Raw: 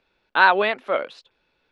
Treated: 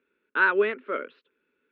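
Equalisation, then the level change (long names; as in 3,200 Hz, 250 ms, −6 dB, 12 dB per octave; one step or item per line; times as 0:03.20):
loudspeaker in its box 110–2,700 Hz, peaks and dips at 250 Hz +7 dB, 420 Hz +9 dB, 750 Hz +5 dB, 1,400 Hz +7 dB
parametric band 150 Hz +7 dB 0.35 octaves
phaser with its sweep stopped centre 310 Hz, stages 4
−5.5 dB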